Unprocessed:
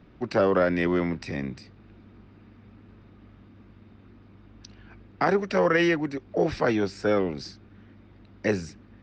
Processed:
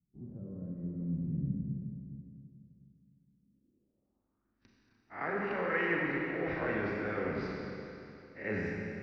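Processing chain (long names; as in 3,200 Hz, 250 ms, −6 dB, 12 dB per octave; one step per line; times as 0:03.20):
peak hold with a rise ahead of every peak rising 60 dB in 0.32 s
noise gate −42 dBFS, range −28 dB
reversed playback
downward compressor 6 to 1, threshold −31 dBFS, peak gain reduction 14 dB
reversed playback
four-comb reverb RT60 2.9 s, combs from 29 ms, DRR −2.5 dB
low-pass filter sweep 160 Hz → 2,000 Hz, 0:03.33–0:04.65
level −5 dB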